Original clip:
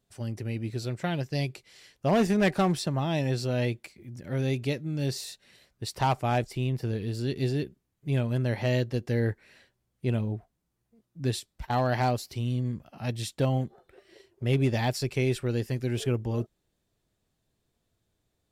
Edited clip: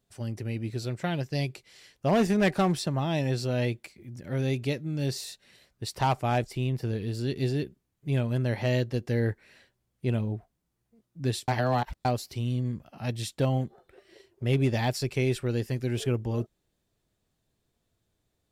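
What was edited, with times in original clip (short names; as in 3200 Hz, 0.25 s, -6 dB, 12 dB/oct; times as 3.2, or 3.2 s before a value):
11.48–12.05 reverse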